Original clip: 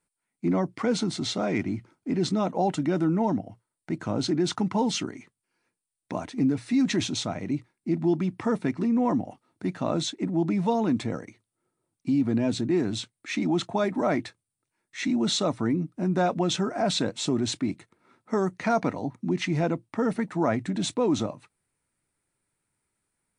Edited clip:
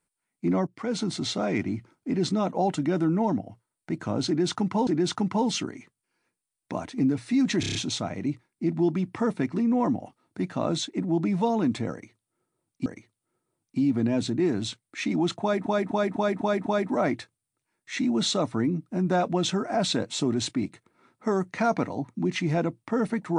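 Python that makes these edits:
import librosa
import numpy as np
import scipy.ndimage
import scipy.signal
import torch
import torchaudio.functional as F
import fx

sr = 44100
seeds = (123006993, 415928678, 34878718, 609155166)

y = fx.edit(x, sr, fx.fade_in_from(start_s=0.67, length_s=0.45, floor_db=-12.0),
    fx.repeat(start_s=4.27, length_s=0.6, count=2),
    fx.stutter(start_s=7.0, slice_s=0.03, count=6),
    fx.repeat(start_s=11.17, length_s=0.94, count=2),
    fx.repeat(start_s=13.72, length_s=0.25, count=6), tone=tone)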